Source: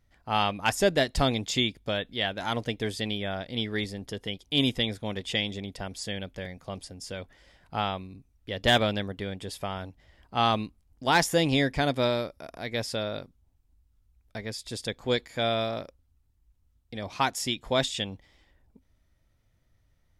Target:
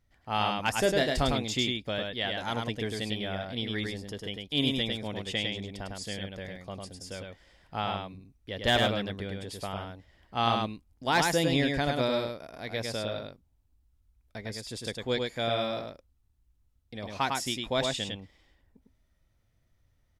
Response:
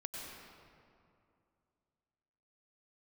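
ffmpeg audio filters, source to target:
-filter_complex "[0:a]asettb=1/sr,asplit=3[link_01][link_02][link_03];[link_01]atrim=end=0.834[link_04];[link_02]atrim=start=0.83:end=1.26,asetpts=PTS-STARTPTS,afade=type=in:duration=0.004:curve=qsin,afade=type=out:start_time=0.426:duration=0.004:curve=qsin,asplit=2[link_05][link_06];[link_06]adelay=27,volume=-9dB[link_07];[link_05][link_07]amix=inputs=2:normalize=0,atrim=end_sample=18963[link_08];[link_03]atrim=start=1.256[link_09];[link_04][link_08]acrossfade=duration=0.004:curve1=hsin:curve2=qsin[link_10];[link_10][link_09]acrossfade=duration=0.004:curve1=qsin:curve2=hsin,aecho=1:1:103:0.668,volume=-3.5dB"

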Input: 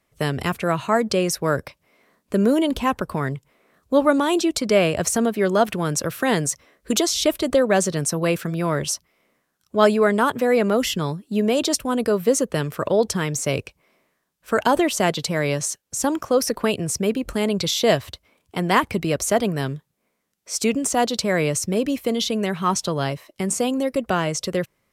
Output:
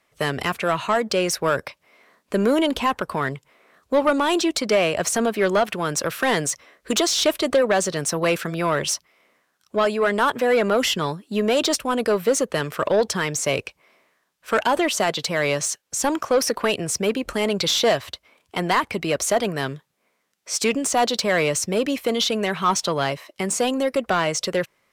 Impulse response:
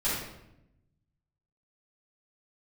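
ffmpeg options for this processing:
-filter_complex "[0:a]alimiter=limit=-8dB:level=0:latency=1:release=476,asplit=2[link_01][link_02];[link_02]highpass=frequency=720:poles=1,volume=13dB,asoftclip=type=tanh:threshold=-8dB[link_03];[link_01][link_03]amix=inputs=2:normalize=0,lowpass=frequency=5100:poles=1,volume=-6dB,volume=-1.5dB"

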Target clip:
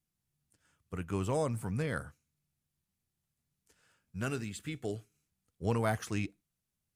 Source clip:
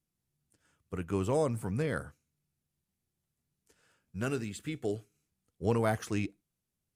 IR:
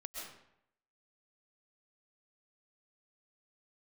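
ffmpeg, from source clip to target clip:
-af "equalizer=frequency=390:width_type=o:width=1.5:gain=-4.5"

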